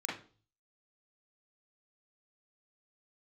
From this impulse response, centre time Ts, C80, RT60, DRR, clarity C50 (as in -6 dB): 40 ms, 12.0 dB, 0.40 s, -5.5 dB, 4.5 dB